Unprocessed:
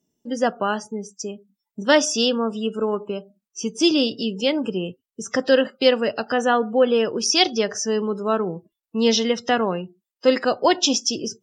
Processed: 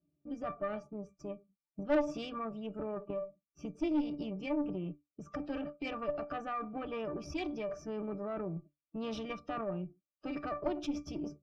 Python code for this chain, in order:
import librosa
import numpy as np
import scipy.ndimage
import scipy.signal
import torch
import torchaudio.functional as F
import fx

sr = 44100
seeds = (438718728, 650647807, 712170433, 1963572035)

p1 = np.where(x < 0.0, 10.0 ** (-3.0 / 20.0) * x, x)
p2 = fx.octave_resonator(p1, sr, note='D', decay_s=0.17)
p3 = fx.over_compress(p2, sr, threshold_db=-44.0, ratio=-1.0)
p4 = p2 + F.gain(torch.from_numpy(p3), 0.0).numpy()
p5 = fx.tube_stage(p4, sr, drive_db=24.0, bias=0.65)
y = F.gain(torch.from_numpy(p5), 1.0).numpy()